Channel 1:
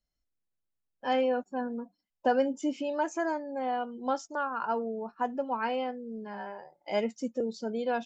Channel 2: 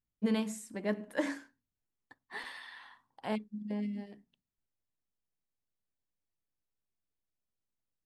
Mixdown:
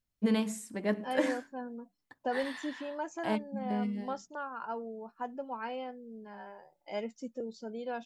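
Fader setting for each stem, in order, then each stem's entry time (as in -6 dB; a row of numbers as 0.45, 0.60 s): -7.5, +2.5 dB; 0.00, 0.00 s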